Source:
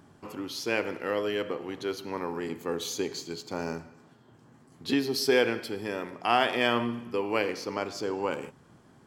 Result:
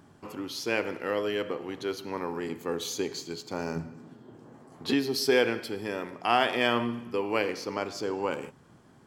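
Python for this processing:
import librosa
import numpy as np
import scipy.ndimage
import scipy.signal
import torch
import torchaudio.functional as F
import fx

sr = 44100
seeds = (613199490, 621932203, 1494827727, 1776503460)

y = fx.peak_eq(x, sr, hz=fx.line((3.75, 140.0), (4.91, 900.0)), db=11.0, octaves=2.2, at=(3.75, 4.91), fade=0.02)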